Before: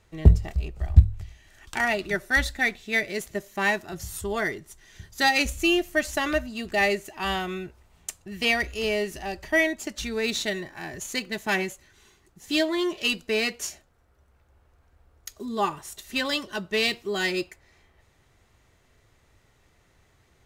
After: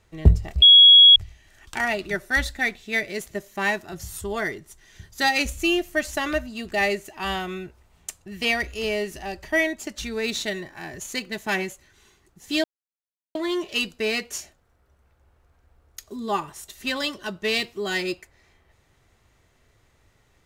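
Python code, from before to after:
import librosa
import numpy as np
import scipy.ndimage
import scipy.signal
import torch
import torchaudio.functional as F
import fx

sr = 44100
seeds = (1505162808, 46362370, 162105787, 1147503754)

y = fx.edit(x, sr, fx.bleep(start_s=0.62, length_s=0.54, hz=3330.0, db=-7.0),
    fx.insert_silence(at_s=12.64, length_s=0.71), tone=tone)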